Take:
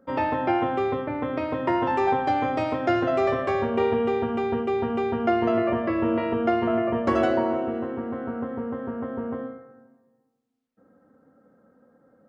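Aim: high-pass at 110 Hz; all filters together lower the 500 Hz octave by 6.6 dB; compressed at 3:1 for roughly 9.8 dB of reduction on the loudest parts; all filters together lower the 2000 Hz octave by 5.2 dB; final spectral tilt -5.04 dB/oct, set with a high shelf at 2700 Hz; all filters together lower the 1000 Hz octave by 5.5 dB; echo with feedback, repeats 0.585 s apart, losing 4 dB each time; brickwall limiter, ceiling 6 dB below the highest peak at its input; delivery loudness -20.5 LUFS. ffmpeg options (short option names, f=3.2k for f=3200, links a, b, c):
-af "highpass=110,equalizer=f=500:t=o:g=-8.5,equalizer=f=1k:t=o:g=-3,equalizer=f=2k:t=o:g=-8.5,highshelf=f=2.7k:g=8,acompressor=threshold=-36dB:ratio=3,alimiter=level_in=6dB:limit=-24dB:level=0:latency=1,volume=-6dB,aecho=1:1:585|1170|1755|2340|2925|3510|4095|4680|5265:0.631|0.398|0.25|0.158|0.0994|0.0626|0.0394|0.0249|0.0157,volume=16.5dB"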